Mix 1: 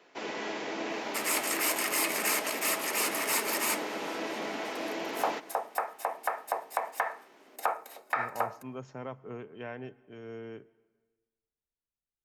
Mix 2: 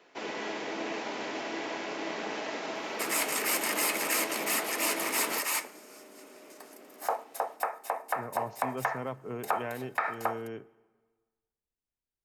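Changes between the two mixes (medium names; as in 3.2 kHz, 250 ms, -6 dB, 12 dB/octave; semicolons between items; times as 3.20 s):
speech +3.5 dB; second sound: entry +1.85 s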